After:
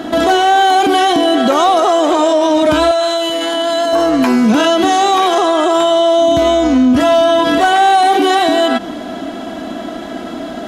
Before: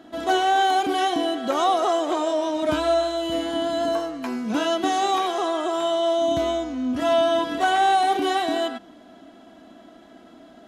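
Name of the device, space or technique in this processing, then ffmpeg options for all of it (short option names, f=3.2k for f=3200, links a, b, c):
loud club master: -filter_complex "[0:a]acompressor=threshold=-30dB:ratio=1.5,asoftclip=type=hard:threshold=-18.5dB,alimiter=level_in=26.5dB:limit=-1dB:release=50:level=0:latency=1,asettb=1/sr,asplit=3[a][b][c];[a]atrim=end=2.914[d];[b]atrim=start=2.91:end=3.93,asetpts=PTS-STARTPTS,afade=t=in:d=0.004:c=qsin,afade=t=out:st=1.016:d=0.004:c=qsin,highpass=f=770:p=1[e];[c]atrim=start=3.926[f];[d][e]acrossfade=d=0.004:c1=hsin:c2=qsin[g];[g][f]acrossfade=d=0.004:c1=qsin:c2=hsin,asettb=1/sr,asplit=3[h][i][j];[h]atrim=end=7.734[k];[i]atrim=start=7.73:end=8.39,asetpts=PTS-STARTPTS,afade=t=in:d=0.004:c=qsin,afade=t=out:st=0.656:d=0.004:c=qsin,highpass=f=160:w=0.5412,highpass=f=160:w=1.3066[l];[j]atrim=start=8.386[m];[k][l]acrossfade=d=0.004:c1=hsin:c2=qsin[n];[n][m]acrossfade=d=0.004:c1=qsin:c2=hsin,volume=-3.5dB"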